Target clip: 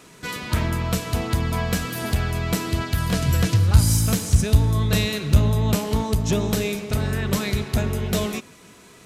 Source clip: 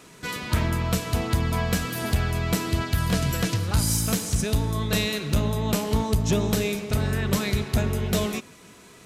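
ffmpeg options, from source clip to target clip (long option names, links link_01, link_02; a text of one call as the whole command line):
ffmpeg -i in.wav -filter_complex "[0:a]asettb=1/sr,asplit=3[link_01][link_02][link_03];[link_01]atrim=end=3.274[link_04];[link_02]atrim=start=3.27:end=5.79,asetpts=PTS-STARTPTS,afade=type=in:duration=0.004:curve=qsin,afade=type=out:start_time=2.516:duration=0.004:curve=qsin,equalizer=frequency=82:width=1.2:gain=10.5[link_05];[link_03]atrim=start=5.786[link_06];[link_04][link_05]acrossfade=duration=0.004:curve1=hsin:curve2=qsin[link_07];[link_07][link_06]acrossfade=duration=0.004:curve1=qsin:curve2=hsin,volume=1dB" out.wav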